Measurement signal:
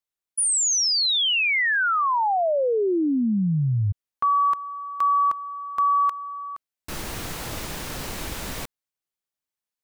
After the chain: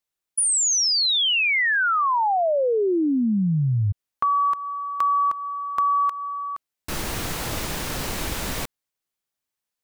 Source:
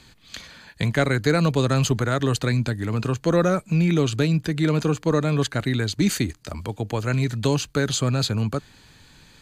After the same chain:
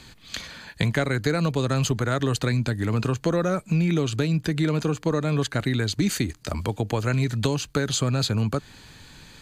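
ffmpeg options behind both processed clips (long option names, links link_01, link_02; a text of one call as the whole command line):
ffmpeg -i in.wav -af "acompressor=threshold=-23dB:ratio=4:attack=8.9:release=672:knee=1:detection=peak,volume=4dB" out.wav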